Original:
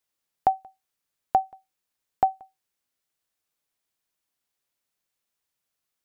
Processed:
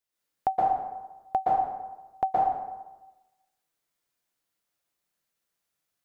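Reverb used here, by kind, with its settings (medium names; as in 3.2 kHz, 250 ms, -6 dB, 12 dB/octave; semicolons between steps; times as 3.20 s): plate-style reverb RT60 1.1 s, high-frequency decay 0.6×, pre-delay 110 ms, DRR -6.5 dB; trim -5.5 dB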